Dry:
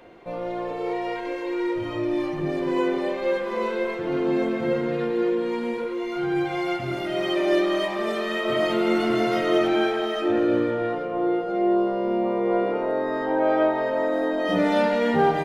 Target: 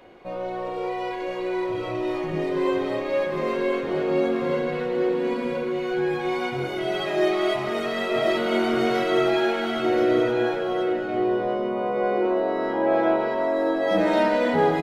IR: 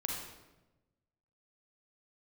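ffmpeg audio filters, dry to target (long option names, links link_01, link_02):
-filter_complex "[0:a]asplit=2[link_01][link_02];[link_02]aecho=0:1:1070:0.531[link_03];[link_01][link_03]amix=inputs=2:normalize=0,asetrate=45938,aresample=44100,asplit=2[link_04][link_05];[1:a]atrim=start_sample=2205,adelay=31[link_06];[link_05][link_06]afir=irnorm=-1:irlink=0,volume=-13.5dB[link_07];[link_04][link_07]amix=inputs=2:normalize=0,volume=-1dB"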